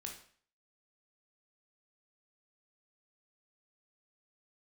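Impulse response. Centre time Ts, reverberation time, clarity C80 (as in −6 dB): 24 ms, 0.50 s, 11.5 dB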